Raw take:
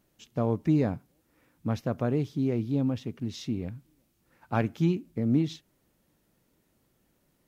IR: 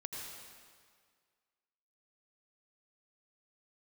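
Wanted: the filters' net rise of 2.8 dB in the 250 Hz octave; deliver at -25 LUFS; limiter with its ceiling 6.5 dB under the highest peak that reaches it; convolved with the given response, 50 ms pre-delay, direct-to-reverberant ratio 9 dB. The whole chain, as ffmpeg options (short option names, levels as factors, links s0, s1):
-filter_complex "[0:a]equalizer=f=250:t=o:g=3.5,alimiter=limit=0.133:level=0:latency=1,asplit=2[s0][s1];[1:a]atrim=start_sample=2205,adelay=50[s2];[s1][s2]afir=irnorm=-1:irlink=0,volume=0.376[s3];[s0][s3]amix=inputs=2:normalize=0,volume=1.58"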